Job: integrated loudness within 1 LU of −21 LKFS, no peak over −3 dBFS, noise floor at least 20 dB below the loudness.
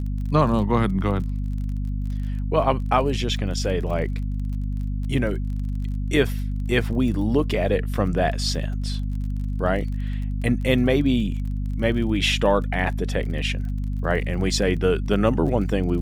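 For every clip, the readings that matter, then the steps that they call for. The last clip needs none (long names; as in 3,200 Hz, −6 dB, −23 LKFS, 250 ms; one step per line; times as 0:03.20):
crackle rate 32 per second; mains hum 50 Hz; hum harmonics up to 250 Hz; level of the hum −23 dBFS; integrated loudness −23.5 LKFS; sample peak −5.0 dBFS; target loudness −21.0 LKFS
→ click removal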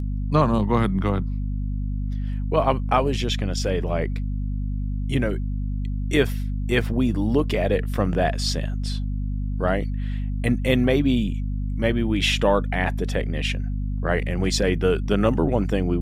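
crackle rate 0.12 per second; mains hum 50 Hz; hum harmonics up to 250 Hz; level of the hum −23 dBFS
→ hum removal 50 Hz, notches 5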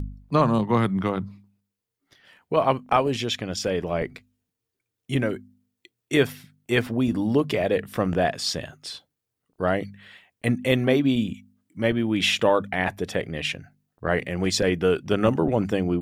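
mains hum none found; integrated loudness −24.0 LKFS; sample peak −6.5 dBFS; target loudness −21.0 LKFS
→ level +3 dB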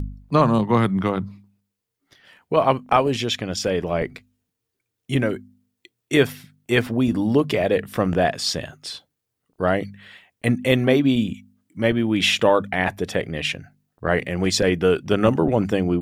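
integrated loudness −21.0 LKFS; sample peak −3.5 dBFS; background noise floor −80 dBFS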